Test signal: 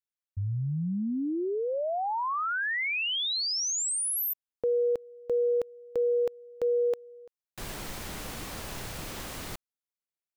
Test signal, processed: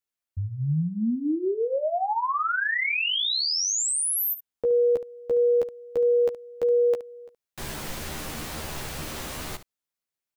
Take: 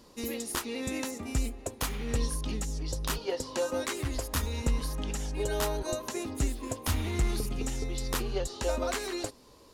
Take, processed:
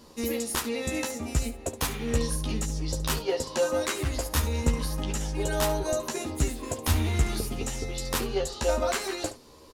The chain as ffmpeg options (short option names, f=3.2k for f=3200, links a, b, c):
-af "aecho=1:1:13|71:0.631|0.224,volume=2.5dB"